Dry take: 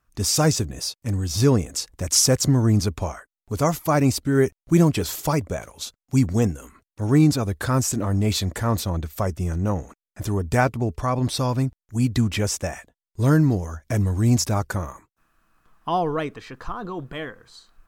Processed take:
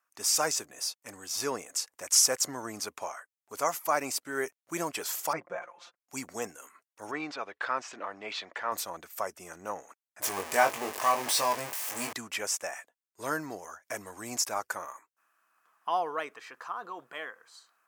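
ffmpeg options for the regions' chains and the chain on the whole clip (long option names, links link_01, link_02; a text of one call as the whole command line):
ffmpeg -i in.wav -filter_complex "[0:a]asettb=1/sr,asplit=3[link_01][link_02][link_03];[link_01]atrim=end=5.334[link_04];[link_02]atrim=start=5.33:end=6,asetpts=PTS-STARTPTS,afade=type=in:duration=0.004:curve=qsin,afade=type=out:start_time=0.666:duration=0.004:curve=qsin,lowpass=1900,equalizer=frequency=420:width=7.3:gain=-5,aecho=1:1:5.7:0.92,atrim=end_sample=29547[link_05];[link_03]atrim=start=5.996[link_06];[link_04][link_05]acrossfade=duration=0.004:curve1=hsin:curve2=qsin[link_07];[link_07][link_06]acrossfade=duration=0.004:curve1=qsin:curve2=hsin,asettb=1/sr,asplit=3[link_08][link_09][link_10];[link_08]atrim=end=7.114[link_11];[link_09]atrim=start=7.11:end=8.72,asetpts=PTS-STARTPTS,afade=type=in:duration=0.004:curve=qsin,afade=type=out:start_time=1.606:duration=0.004:curve=qsin,lowpass=frequency=3400:width=0.5412,lowpass=frequency=3400:width=1.3066,aemphasis=mode=production:type=bsi[link_12];[link_10]atrim=start=8.716[link_13];[link_11][link_12]acrossfade=duration=0.004:curve1=hsin:curve2=qsin[link_14];[link_14][link_13]acrossfade=duration=0.004:curve1=qsin:curve2=hsin,asettb=1/sr,asplit=3[link_15][link_16][link_17];[link_15]atrim=end=10.224[link_18];[link_16]atrim=start=10.22:end=12.13,asetpts=PTS-STARTPTS,afade=type=in:duration=0.004:curve=qsin,afade=type=out:start_time=1.906:duration=0.004:curve=qsin,aeval=exprs='val(0)+0.5*0.0891*sgn(val(0))':channel_layout=same,bandreject=frequency=1400:width=7.9,asplit=2[link_19][link_20];[link_20]adelay=21,volume=-4dB[link_21];[link_19][link_21]amix=inputs=2:normalize=0,atrim=end_sample=84231[link_22];[link_17]atrim=start=12.126[link_23];[link_18][link_22]acrossfade=duration=0.004:curve1=hsin:curve2=qsin[link_24];[link_24][link_23]acrossfade=duration=0.004:curve1=qsin:curve2=hsin,highpass=760,equalizer=frequency=3800:width_type=o:width=0.71:gain=-6.5,volume=-2.5dB" out.wav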